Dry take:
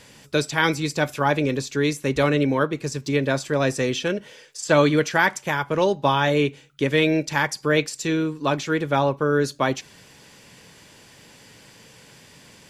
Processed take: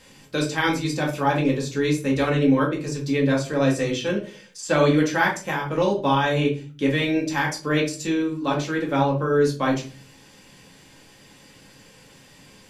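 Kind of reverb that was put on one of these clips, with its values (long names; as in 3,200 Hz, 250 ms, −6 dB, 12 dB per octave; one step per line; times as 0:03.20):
rectangular room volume 210 cubic metres, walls furnished, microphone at 2.1 metres
level −5.5 dB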